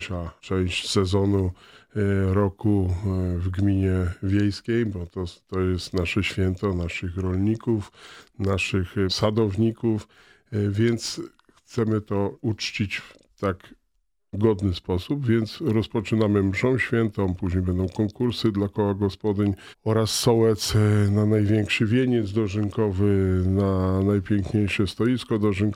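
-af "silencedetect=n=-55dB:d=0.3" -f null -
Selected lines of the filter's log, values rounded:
silence_start: 13.76
silence_end: 14.33 | silence_duration: 0.57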